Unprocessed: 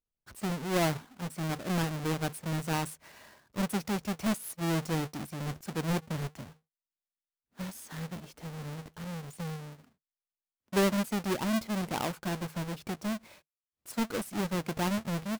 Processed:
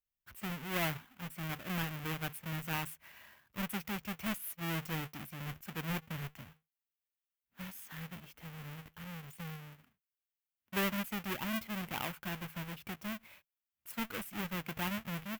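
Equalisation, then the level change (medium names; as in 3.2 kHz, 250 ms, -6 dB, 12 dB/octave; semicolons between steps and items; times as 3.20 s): amplifier tone stack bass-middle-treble 5-5-5; high-order bell 6.3 kHz -11 dB; +9.0 dB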